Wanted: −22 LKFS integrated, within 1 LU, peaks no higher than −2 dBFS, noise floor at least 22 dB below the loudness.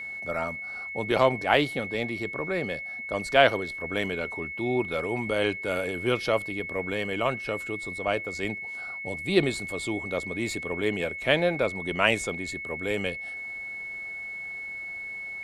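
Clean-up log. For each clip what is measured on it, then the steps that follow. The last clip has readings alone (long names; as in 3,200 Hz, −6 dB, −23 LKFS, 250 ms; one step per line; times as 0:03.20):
interfering tone 2,200 Hz; level of the tone −34 dBFS; integrated loudness −28.0 LKFS; sample peak −3.0 dBFS; target loudness −22.0 LKFS
→ notch filter 2,200 Hz, Q 30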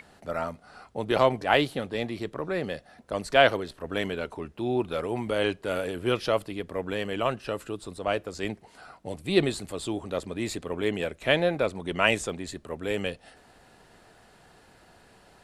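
interfering tone none found; integrated loudness −28.5 LKFS; sample peak −3.5 dBFS; target loudness −22.0 LKFS
→ level +6.5 dB
brickwall limiter −2 dBFS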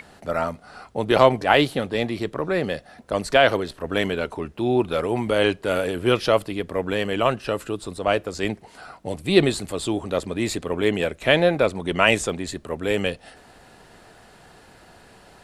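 integrated loudness −22.5 LKFS; sample peak −2.0 dBFS; background noise floor −51 dBFS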